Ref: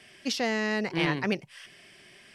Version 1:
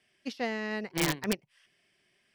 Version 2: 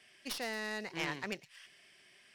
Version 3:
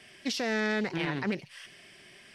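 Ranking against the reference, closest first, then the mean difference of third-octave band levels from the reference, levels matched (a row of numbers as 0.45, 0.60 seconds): 3, 2, 1; 2.5, 4.0, 8.0 decibels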